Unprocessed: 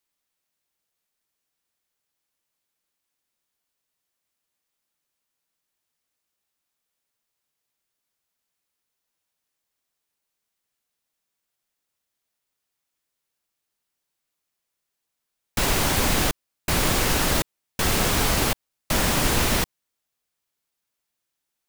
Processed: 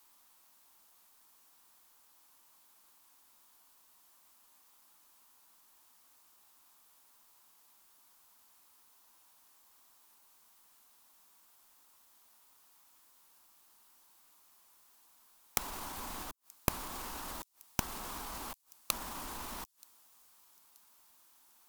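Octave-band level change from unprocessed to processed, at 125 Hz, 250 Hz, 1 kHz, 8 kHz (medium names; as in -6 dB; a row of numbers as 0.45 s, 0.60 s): -21.5 dB, -20.0 dB, -15.0 dB, -16.5 dB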